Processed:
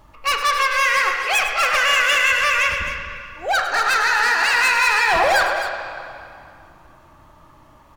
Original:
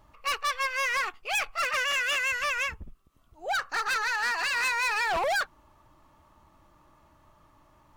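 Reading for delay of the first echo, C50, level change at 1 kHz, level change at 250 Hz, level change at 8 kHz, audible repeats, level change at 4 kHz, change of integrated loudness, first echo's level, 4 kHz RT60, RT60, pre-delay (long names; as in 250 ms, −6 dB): 102 ms, 2.5 dB, +11.0 dB, +11.5 dB, +9.5 dB, 2, +10.5 dB, +10.5 dB, −11.0 dB, 2.0 s, 2.4 s, 21 ms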